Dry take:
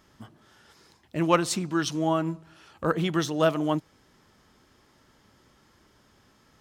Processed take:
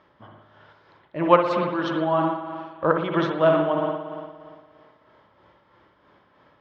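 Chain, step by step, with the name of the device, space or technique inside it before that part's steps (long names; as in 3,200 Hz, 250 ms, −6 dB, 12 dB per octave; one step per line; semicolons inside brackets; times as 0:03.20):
combo amplifier with spring reverb and tremolo (spring reverb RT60 1.9 s, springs 57 ms, chirp 65 ms, DRR 2 dB; amplitude tremolo 3.1 Hz, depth 45%; loudspeaker in its box 88–3,400 Hz, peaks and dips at 89 Hz −5 dB, 140 Hz −4 dB, 230 Hz −9 dB, 570 Hz +7 dB, 1,000 Hz +6 dB, 2,700 Hz −4 dB)
level +3 dB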